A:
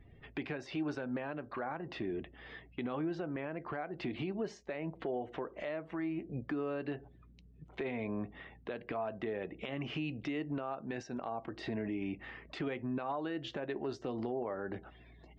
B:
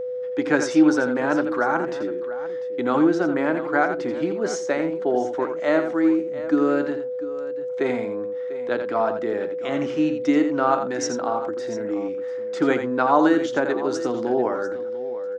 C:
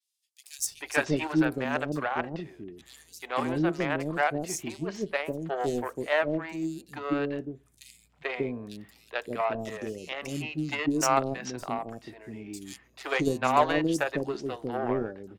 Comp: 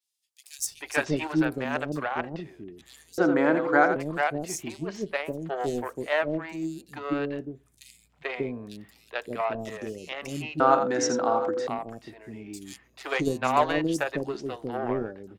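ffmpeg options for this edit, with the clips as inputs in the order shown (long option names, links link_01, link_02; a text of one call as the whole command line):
ffmpeg -i take0.wav -i take1.wav -i take2.wav -filter_complex "[1:a]asplit=2[link_01][link_02];[2:a]asplit=3[link_03][link_04][link_05];[link_03]atrim=end=3.182[link_06];[link_01]atrim=start=3.178:end=3.962[link_07];[link_04]atrim=start=3.958:end=10.602[link_08];[link_02]atrim=start=10.598:end=11.672[link_09];[link_05]atrim=start=11.668[link_10];[link_06][link_07]acrossfade=duration=0.004:curve1=hsin:curve2=hsin[link_11];[link_11][link_08]acrossfade=duration=0.004:curve1=hsin:curve2=hsin[link_12];[link_12][link_09]acrossfade=duration=0.004:curve1=hsin:curve2=hsin[link_13];[link_13][link_10]acrossfade=duration=0.004:curve1=hsin:curve2=hsin" out.wav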